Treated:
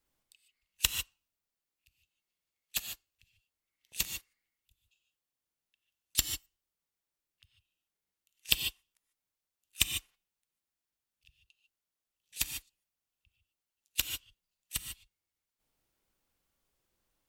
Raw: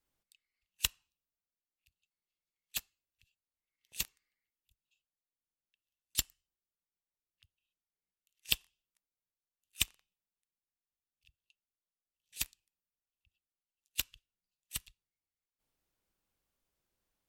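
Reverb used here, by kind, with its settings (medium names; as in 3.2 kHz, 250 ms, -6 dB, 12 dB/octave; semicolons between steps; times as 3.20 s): gated-style reverb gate 170 ms rising, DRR 5.5 dB; trim +3.5 dB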